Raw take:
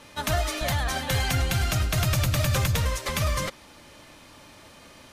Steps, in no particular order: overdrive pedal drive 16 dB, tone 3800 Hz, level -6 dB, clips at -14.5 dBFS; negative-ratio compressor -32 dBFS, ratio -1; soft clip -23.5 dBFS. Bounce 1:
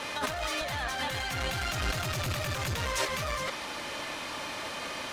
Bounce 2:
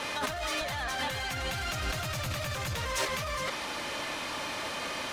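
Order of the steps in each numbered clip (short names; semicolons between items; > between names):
soft clip > overdrive pedal > negative-ratio compressor; overdrive pedal > negative-ratio compressor > soft clip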